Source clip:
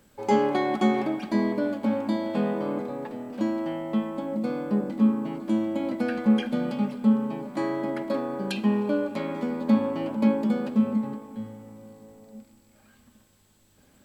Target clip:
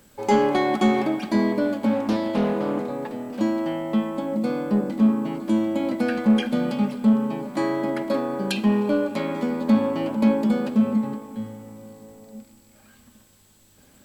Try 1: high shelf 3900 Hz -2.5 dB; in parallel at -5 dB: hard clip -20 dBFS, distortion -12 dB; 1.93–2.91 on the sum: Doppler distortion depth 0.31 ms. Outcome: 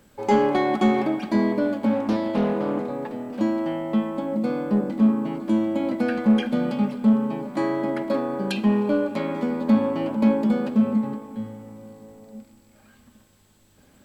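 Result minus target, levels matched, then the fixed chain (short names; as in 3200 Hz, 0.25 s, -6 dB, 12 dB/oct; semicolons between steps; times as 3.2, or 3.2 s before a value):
8000 Hz band -5.5 dB
high shelf 3900 Hz +4.5 dB; in parallel at -5 dB: hard clip -20 dBFS, distortion -12 dB; 1.93–2.91 on the sum: Doppler distortion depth 0.31 ms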